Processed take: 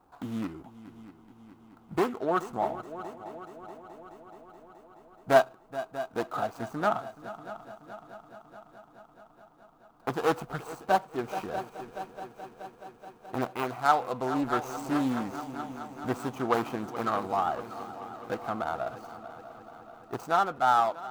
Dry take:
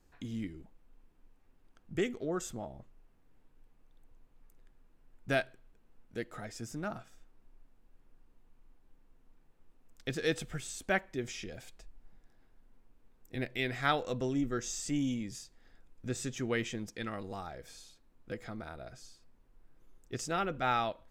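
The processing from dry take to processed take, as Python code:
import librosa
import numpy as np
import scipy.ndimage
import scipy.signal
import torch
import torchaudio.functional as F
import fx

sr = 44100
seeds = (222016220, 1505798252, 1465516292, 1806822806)

y = scipy.signal.medfilt(x, 25)
y = fx.highpass(y, sr, hz=260.0, slope=6)
y = fx.band_shelf(y, sr, hz=1000.0, db=11.5, octaves=1.3)
y = fx.echo_heads(y, sr, ms=213, heads='second and third', feedback_pct=65, wet_db=-16)
y = fx.rider(y, sr, range_db=4, speed_s=0.5)
y = fx.high_shelf(y, sr, hz=12000.0, db=10.5)
y = fx.doppler_dist(y, sr, depth_ms=0.22)
y = F.gain(torch.from_numpy(y), 5.0).numpy()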